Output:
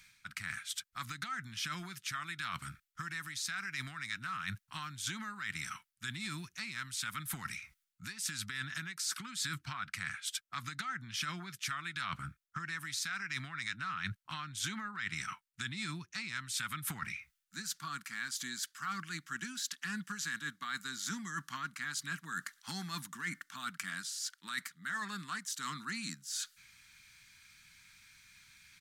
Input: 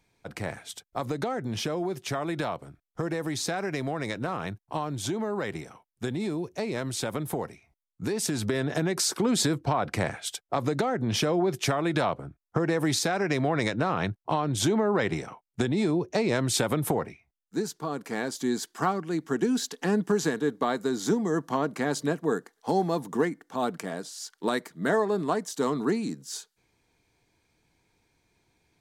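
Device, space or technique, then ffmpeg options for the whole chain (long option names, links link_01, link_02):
compression on the reversed sound: -af "firequalizer=gain_entry='entry(190,0);entry(460,-29);entry(1300,14)':delay=0.05:min_phase=1,areverse,acompressor=threshold=-39dB:ratio=5,areverse"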